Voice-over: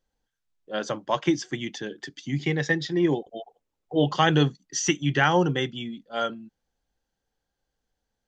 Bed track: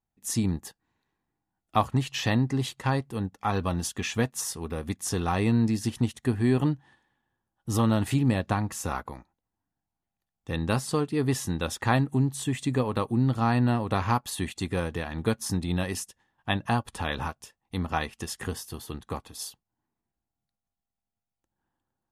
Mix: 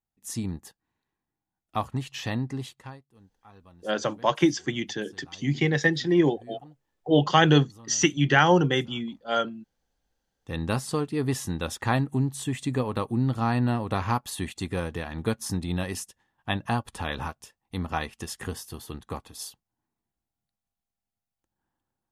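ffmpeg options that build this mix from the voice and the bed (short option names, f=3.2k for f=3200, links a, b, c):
-filter_complex "[0:a]adelay=3150,volume=2dB[a];[1:a]volume=19.5dB,afade=t=out:st=2.52:d=0.48:silence=0.0944061,afade=t=in:st=10.17:d=0.42:silence=0.0595662[b];[a][b]amix=inputs=2:normalize=0"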